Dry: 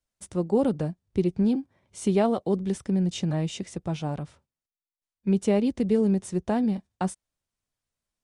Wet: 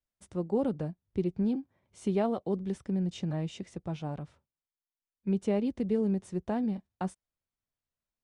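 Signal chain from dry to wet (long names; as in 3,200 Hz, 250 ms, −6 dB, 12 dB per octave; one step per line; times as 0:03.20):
high-shelf EQ 5,100 Hz −10 dB
level −6 dB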